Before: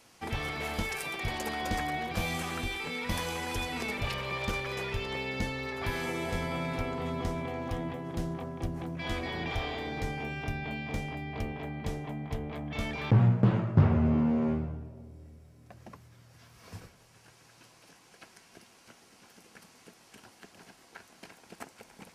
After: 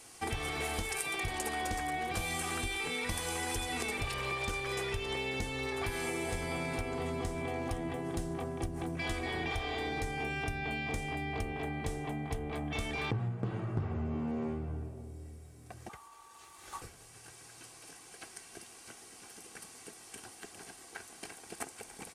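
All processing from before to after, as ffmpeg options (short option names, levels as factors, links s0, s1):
-filter_complex "[0:a]asettb=1/sr,asplit=3[s0][s1][s2];[s0]atrim=end=15.894[s3];[s1]atrim=start=15.89:end=16.82,asetpts=PTS-STARTPTS,afade=t=in:d=0.004:c=qsin,afade=t=out:st=0.926:d=0.004:c=qsin,aeval=exprs='val(0)*sin(2*PI*1000*n/s)':c=same,afreqshift=31[s4];[s2]atrim=start=16.816[s5];[s3][s4]acrossfade=d=0.004:c1=hsin:c2=qsin[s6];[s6][s5]acrossfade=d=0.004:c1=qsin:c2=hsin,equalizer=f=8900:t=o:w=0.65:g=12,aecho=1:1:2.6:0.41,acompressor=threshold=0.02:ratio=8,volume=1.26"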